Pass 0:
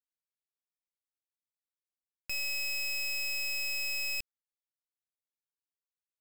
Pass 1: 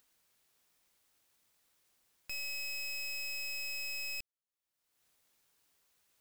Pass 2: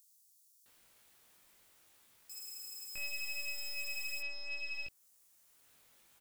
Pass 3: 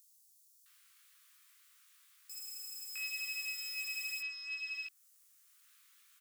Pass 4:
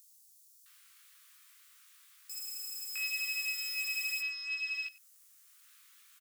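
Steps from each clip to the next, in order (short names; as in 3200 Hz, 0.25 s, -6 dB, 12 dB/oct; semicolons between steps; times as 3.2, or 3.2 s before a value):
upward compressor, threshold -46 dBFS; gain -5.5 dB
power-law curve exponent 0.7; chorus 0.67 Hz, delay 18.5 ms, depth 2.4 ms; bands offset in time highs, lows 0.66 s, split 5300 Hz; gain +1 dB
steep high-pass 1100 Hz 72 dB/oct; gain +1 dB
echo 95 ms -19.5 dB; gain +4.5 dB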